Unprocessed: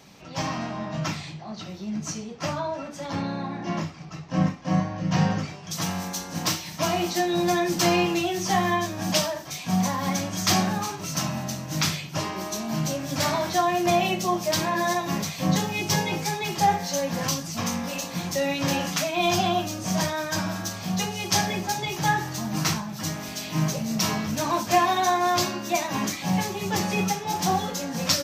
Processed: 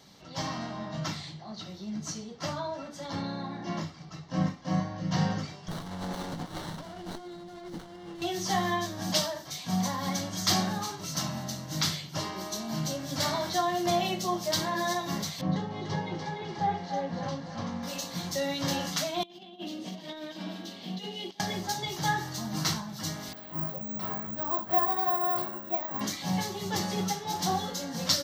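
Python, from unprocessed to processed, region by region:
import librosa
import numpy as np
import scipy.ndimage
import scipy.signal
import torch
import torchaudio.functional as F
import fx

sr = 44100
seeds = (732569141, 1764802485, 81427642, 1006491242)

y = fx.chain(x, sr, fx.lowpass(hz=7500.0, slope=12),
    fx.over_compress(threshold_db=-34.0, ratio=-1.0),
    fx.running_max(window=17), at=(5.68, 8.22))
y = fx.chain(y, sr, fx.spacing_loss(db_at_10k=33),
    fx.echo_thinned(ms=293, feedback_pct=48, hz=600.0, wet_db=-4), at=(15.41, 17.83))
y = fx.chain(y, sr, fx.highpass(hz=220.0, slope=24),
    fx.over_compress(threshold_db=-30.0, ratio=-0.5),
    fx.curve_eq(hz=(340.0, 1400.0, 2900.0, 6000.0), db=(0, -15, 1, -17)), at=(19.23, 21.4))
y = fx.chain(y, sr, fx.lowpass(hz=1300.0, slope=12),
    fx.low_shelf(hz=360.0, db=-9.0),
    fx.resample_bad(factor=2, down='filtered', up='zero_stuff'), at=(23.33, 26.01))
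y = fx.peak_eq(y, sr, hz=4100.0, db=6.0, octaves=0.57)
y = fx.notch(y, sr, hz=2500.0, q=6.3)
y = y * 10.0 ** (-5.5 / 20.0)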